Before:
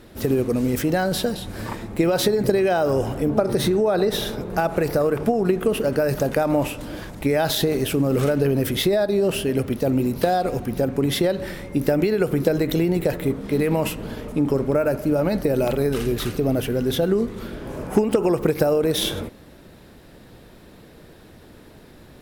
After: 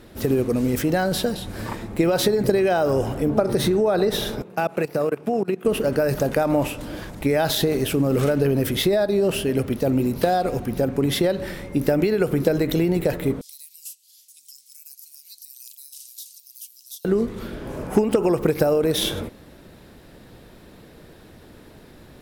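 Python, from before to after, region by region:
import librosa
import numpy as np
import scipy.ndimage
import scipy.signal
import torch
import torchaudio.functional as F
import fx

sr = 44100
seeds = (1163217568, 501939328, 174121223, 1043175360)

y = fx.chain(x, sr, fx.peak_eq(hz=2600.0, db=6.0, octaves=0.37),
    fx.level_steps(step_db=21),
    fx.highpass(hz=130.0, slope=24), at=(4.42, 5.65))
y = fx.chain(y, sr, fx.cheby2_highpass(hz=1200.0, order=4, stop_db=70),
    fx.band_squash(depth_pct=70), at=(13.41, 17.05))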